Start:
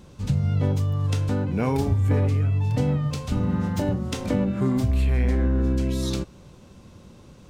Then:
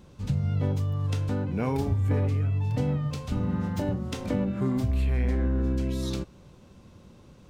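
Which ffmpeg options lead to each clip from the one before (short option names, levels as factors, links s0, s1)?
-af "equalizer=f=8200:t=o:w=1.6:g=-3,volume=0.631"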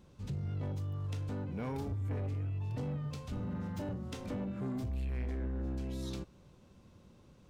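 -af "asoftclip=type=tanh:threshold=0.0668,volume=0.398"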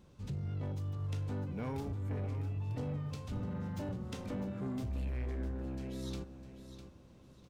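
-af "aecho=1:1:653|1306|1959:0.282|0.0817|0.0237,volume=0.891"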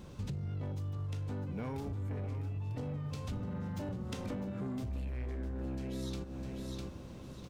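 -af "acompressor=threshold=0.00447:ratio=10,volume=3.55"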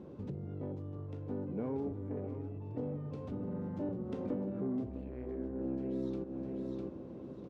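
-af "bandpass=f=360:t=q:w=1.4:csg=0,volume=2.24"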